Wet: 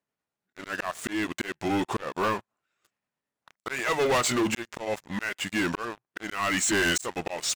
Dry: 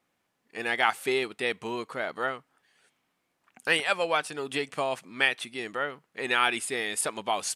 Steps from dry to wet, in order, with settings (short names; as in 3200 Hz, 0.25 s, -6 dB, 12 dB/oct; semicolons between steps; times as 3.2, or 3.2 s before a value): delay-line pitch shifter -3.5 st; in parallel at +1.5 dB: limiter -19 dBFS, peak gain reduction 10.5 dB; on the sum: auto swell 0.592 s; sample leveller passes 5; gain -8.5 dB